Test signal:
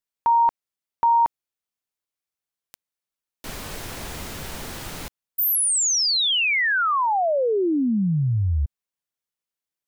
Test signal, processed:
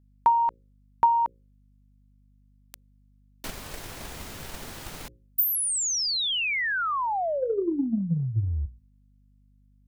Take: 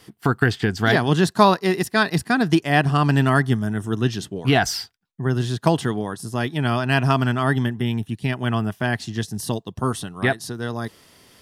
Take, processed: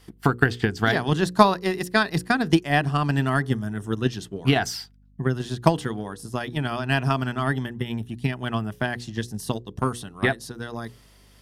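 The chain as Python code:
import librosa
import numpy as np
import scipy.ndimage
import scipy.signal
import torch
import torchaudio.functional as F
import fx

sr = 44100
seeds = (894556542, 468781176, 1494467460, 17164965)

y = fx.hum_notches(x, sr, base_hz=60, count=9)
y = fx.transient(y, sr, attack_db=8, sustain_db=1)
y = fx.add_hum(y, sr, base_hz=50, snr_db=31)
y = y * 10.0 ** (-6.0 / 20.0)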